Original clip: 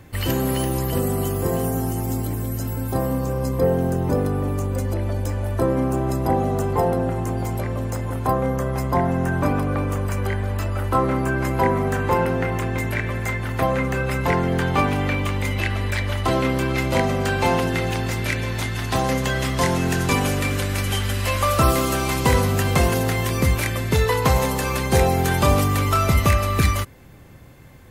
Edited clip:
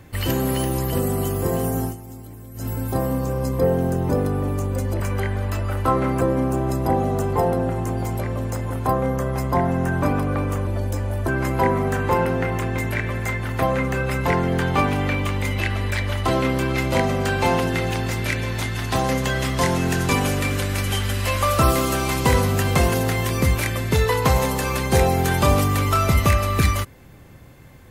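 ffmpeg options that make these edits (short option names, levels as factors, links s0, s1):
-filter_complex "[0:a]asplit=7[s0][s1][s2][s3][s4][s5][s6];[s0]atrim=end=1.97,asetpts=PTS-STARTPTS,afade=t=out:st=1.84:d=0.13:silence=0.211349[s7];[s1]atrim=start=1.97:end=2.54,asetpts=PTS-STARTPTS,volume=0.211[s8];[s2]atrim=start=2.54:end=5.002,asetpts=PTS-STARTPTS,afade=t=in:d=0.13:silence=0.211349[s9];[s3]atrim=start=10.068:end=11.282[s10];[s4]atrim=start=5.608:end=10.072[s11];[s5]atrim=start=4.998:end=5.612[s12];[s6]atrim=start=11.278[s13];[s7][s8][s9]concat=n=3:v=0:a=1[s14];[s14][s10]acrossfade=d=0.004:c1=hsin:c2=hsin[s15];[s15][s11]acrossfade=d=0.004:c1=hsin:c2=hsin[s16];[s16][s12]acrossfade=d=0.004:c1=hsin:c2=hsin[s17];[s17][s13]acrossfade=d=0.004:c1=hsin:c2=hsin"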